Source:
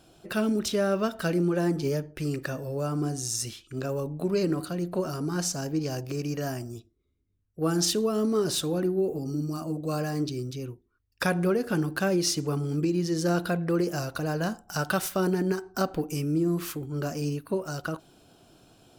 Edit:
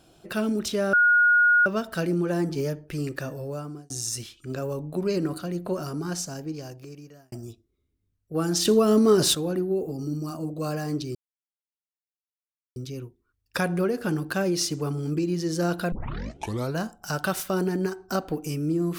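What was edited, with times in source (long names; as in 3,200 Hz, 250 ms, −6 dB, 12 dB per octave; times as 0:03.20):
0:00.93: insert tone 1,440 Hz −15 dBFS 0.73 s
0:02.65–0:03.17: fade out
0:05.14–0:06.59: fade out
0:07.92–0:08.62: clip gain +7 dB
0:10.42: splice in silence 1.61 s
0:13.58: tape start 0.86 s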